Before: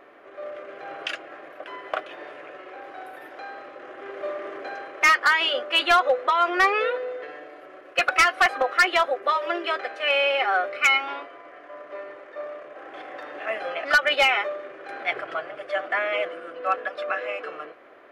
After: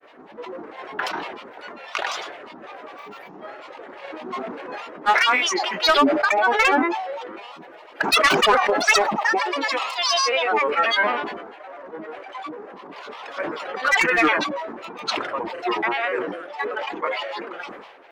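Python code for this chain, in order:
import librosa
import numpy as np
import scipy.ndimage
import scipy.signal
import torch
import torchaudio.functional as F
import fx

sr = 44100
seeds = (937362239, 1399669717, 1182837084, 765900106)

y = fx.granulator(x, sr, seeds[0], grain_ms=100.0, per_s=20.0, spray_ms=100.0, spread_st=12)
y = fx.sustainer(y, sr, db_per_s=47.0)
y = F.gain(torch.from_numpy(y), 2.0).numpy()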